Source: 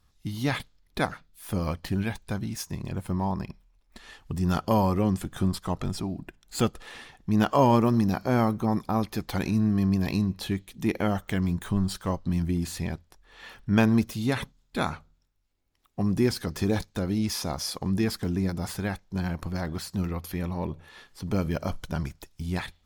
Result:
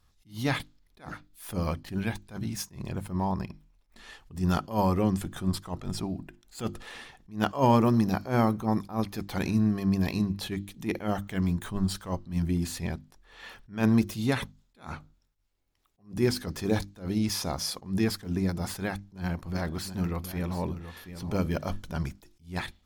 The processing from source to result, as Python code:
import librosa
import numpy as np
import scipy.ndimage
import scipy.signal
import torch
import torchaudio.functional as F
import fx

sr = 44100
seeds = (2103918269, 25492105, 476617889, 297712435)

y = fx.echo_single(x, sr, ms=725, db=-11.5, at=(18.82, 21.83))
y = fx.hum_notches(y, sr, base_hz=50, count=7)
y = fx.attack_slew(y, sr, db_per_s=190.0)